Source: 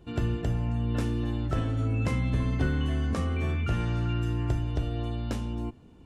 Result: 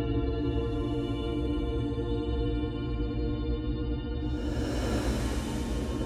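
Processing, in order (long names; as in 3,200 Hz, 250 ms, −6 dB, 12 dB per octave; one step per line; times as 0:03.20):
feedback echo with a band-pass in the loop 75 ms, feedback 57%, band-pass 380 Hz, level −3 dB
pitch vibrato 0.78 Hz 48 cents
extreme stretch with random phases 15×, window 0.10 s, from 0:04.99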